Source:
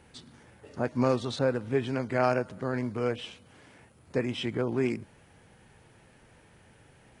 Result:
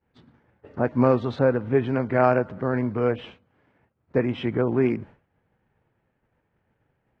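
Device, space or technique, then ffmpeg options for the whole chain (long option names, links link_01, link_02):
hearing-loss simulation: -af "lowpass=1900,agate=range=-33dB:threshold=-45dB:ratio=3:detection=peak,volume=6.5dB"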